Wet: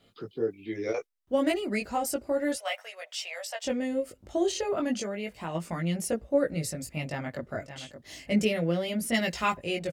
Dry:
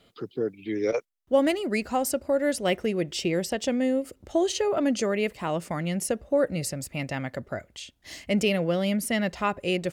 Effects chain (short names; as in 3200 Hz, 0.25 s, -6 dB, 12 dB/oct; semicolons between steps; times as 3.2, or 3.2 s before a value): 2.56–3.65 elliptic high-pass 620 Hz, stop band 50 dB; 7.03–7.49 echo throw 0.57 s, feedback 15%, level -11 dB; chorus voices 2, 0.33 Hz, delay 19 ms, depth 1.5 ms; 4.94–5.55 compressor 5:1, threshold -31 dBFS, peak gain reduction 6.5 dB; 9.14–9.57 high shelf 2200 Hz +11.5 dB